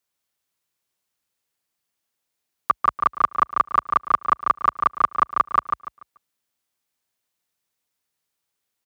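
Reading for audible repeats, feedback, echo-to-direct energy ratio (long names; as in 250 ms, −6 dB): 3, 27%, −4.5 dB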